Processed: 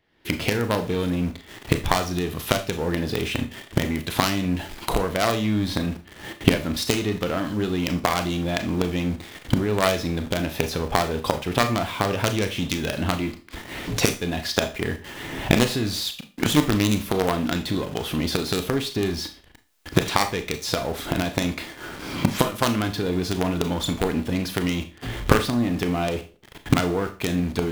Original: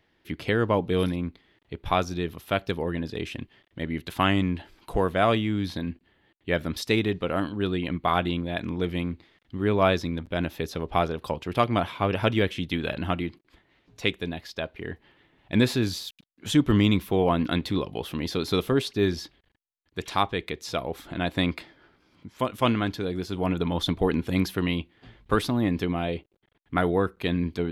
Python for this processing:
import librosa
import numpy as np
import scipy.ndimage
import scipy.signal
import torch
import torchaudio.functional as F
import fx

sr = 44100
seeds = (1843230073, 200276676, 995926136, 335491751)

p1 = fx.self_delay(x, sr, depth_ms=0.15)
p2 = fx.recorder_agc(p1, sr, target_db=-14.0, rise_db_per_s=45.0, max_gain_db=30)
p3 = fx.quant_companded(p2, sr, bits=2)
p4 = p2 + F.gain(torch.from_numpy(p3), -7.0).numpy()
p5 = fx.rev_schroeder(p4, sr, rt60_s=0.33, comb_ms=26, drr_db=7.5)
y = F.gain(torch.from_numpy(p5), -4.0).numpy()